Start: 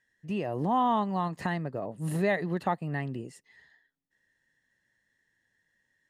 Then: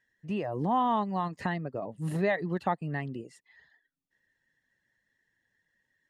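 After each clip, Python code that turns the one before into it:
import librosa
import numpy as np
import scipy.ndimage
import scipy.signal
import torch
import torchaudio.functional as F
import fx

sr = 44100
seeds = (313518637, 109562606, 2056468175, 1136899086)

y = fx.dereverb_blind(x, sr, rt60_s=0.5)
y = fx.high_shelf(y, sr, hz=9300.0, db=-11.5)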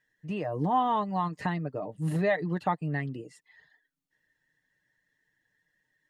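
y = x + 0.45 * np.pad(x, (int(6.6 * sr / 1000.0), 0))[:len(x)]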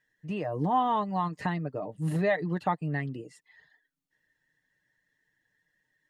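y = x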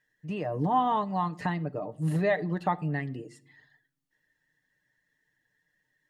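y = fx.room_shoebox(x, sr, seeds[0], volume_m3=960.0, walls='furnished', distance_m=0.39)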